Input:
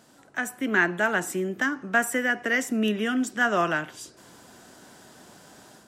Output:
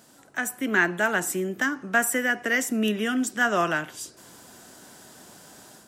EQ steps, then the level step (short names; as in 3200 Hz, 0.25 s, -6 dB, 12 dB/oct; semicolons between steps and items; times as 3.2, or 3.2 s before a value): high shelf 7000 Hz +9 dB; 0.0 dB